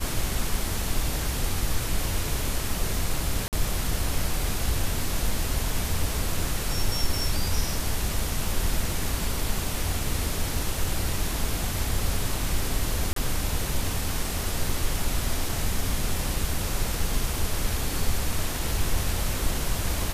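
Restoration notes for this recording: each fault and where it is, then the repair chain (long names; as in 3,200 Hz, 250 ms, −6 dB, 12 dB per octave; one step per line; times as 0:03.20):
0:03.48–0:03.53: drop-out 48 ms
0:13.13–0:13.16: drop-out 33 ms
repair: repair the gap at 0:03.48, 48 ms
repair the gap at 0:13.13, 33 ms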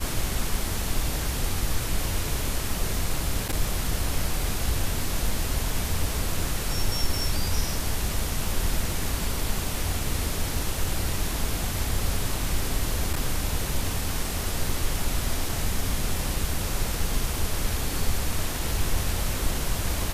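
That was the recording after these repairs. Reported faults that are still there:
none of them is left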